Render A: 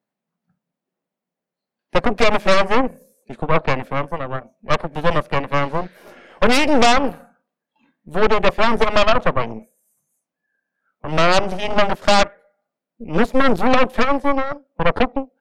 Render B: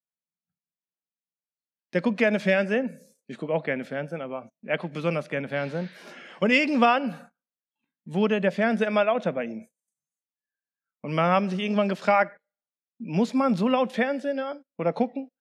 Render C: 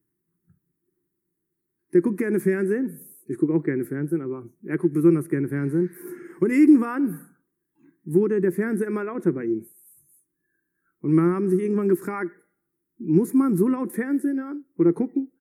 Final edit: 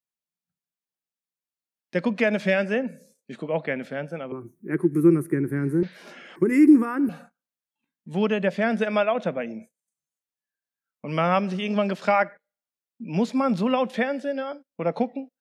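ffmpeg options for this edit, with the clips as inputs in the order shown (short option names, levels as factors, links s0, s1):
-filter_complex "[2:a]asplit=2[s0][s1];[1:a]asplit=3[s2][s3][s4];[s2]atrim=end=4.322[s5];[s0]atrim=start=4.318:end=5.832[s6];[s3]atrim=start=5.828:end=6.362[s7];[s1]atrim=start=6.358:end=7.092[s8];[s4]atrim=start=7.088[s9];[s5][s6]acrossfade=d=0.004:c1=hsin:c2=hsin[s10];[s10][s7]acrossfade=d=0.004:c1=hsin:c2=hsin[s11];[s11][s8]acrossfade=d=0.004:c1=hsin:c2=hsin[s12];[s12][s9]acrossfade=d=0.004:c1=hsin:c2=hsin"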